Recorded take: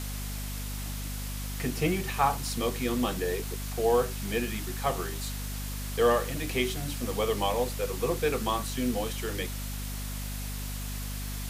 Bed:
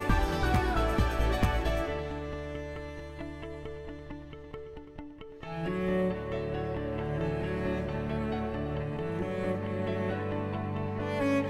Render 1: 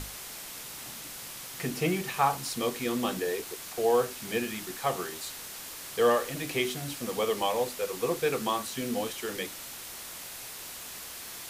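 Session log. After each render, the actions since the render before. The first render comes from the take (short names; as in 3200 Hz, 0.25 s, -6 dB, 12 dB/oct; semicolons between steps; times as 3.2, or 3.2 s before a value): notches 50/100/150/200/250/300 Hz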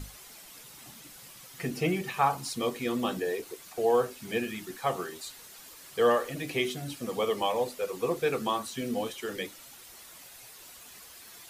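denoiser 10 dB, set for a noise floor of -42 dBFS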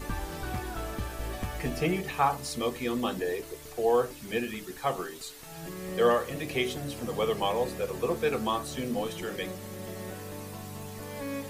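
add bed -8 dB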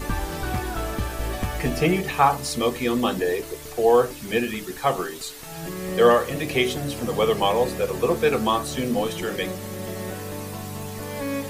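gain +7.5 dB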